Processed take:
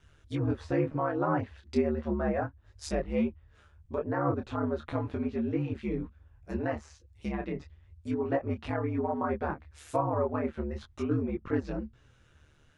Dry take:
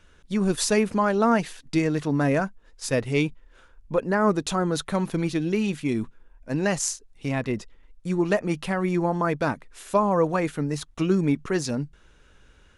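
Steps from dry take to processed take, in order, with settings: treble ducked by the level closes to 1500 Hz, closed at -21.5 dBFS; ring modulator 74 Hz; detuned doubles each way 12 cents

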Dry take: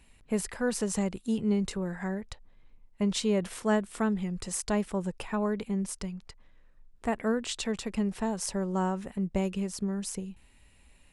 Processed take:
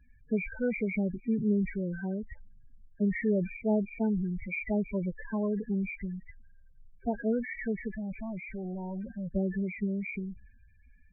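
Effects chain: nonlinear frequency compression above 1500 Hz 4:1; transient shaper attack +1 dB, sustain +6 dB; 7.9–9.28 hard clip -33 dBFS, distortion -13 dB; air absorption 480 m; loudest bins only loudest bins 8

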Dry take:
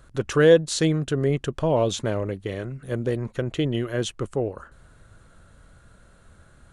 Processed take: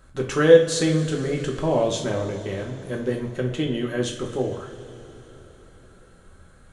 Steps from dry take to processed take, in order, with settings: two-slope reverb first 0.41 s, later 4.4 s, from -18 dB, DRR -1 dB; gain -2.5 dB

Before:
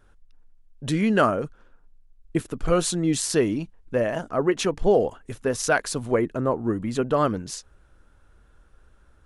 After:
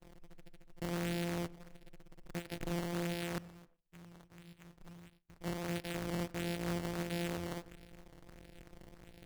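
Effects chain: sample sorter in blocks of 256 samples; soft clip -18.5 dBFS, distortion -12 dB; compressor 4:1, threshold -35 dBFS, peak gain reduction 12 dB; low shelf 210 Hz -11 dB; fixed phaser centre 2600 Hz, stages 4; limiter -35 dBFS, peak gain reduction 10.5 dB; 3.38–5.41 passive tone stack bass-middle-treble 6-0-2; decimation with a swept rate 12×, swing 100% 1.5 Hz; tape echo 97 ms, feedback 63%, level -19.5 dB, low-pass 2200 Hz; gate with hold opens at -57 dBFS; gain +7.5 dB

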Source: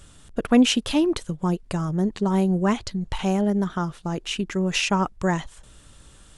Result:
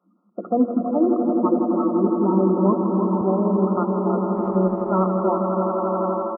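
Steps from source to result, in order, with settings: bin magnitudes rounded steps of 30 dB; bell 810 Hz -6.5 dB 0.3 oct; notches 60/120/180/240/300/360/420/480 Hz; comb 5.6 ms, depth 31%; swelling echo 85 ms, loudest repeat 8, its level -11 dB; AGC; FFT band-pass 180–1400 Hz; 4.35–5.03 transient shaper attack -2 dB, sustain -7 dB; multi-head echo 0.161 s, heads first and second, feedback 62%, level -10 dB; 3.21–3.77 three-band expander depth 40%; gain -5.5 dB

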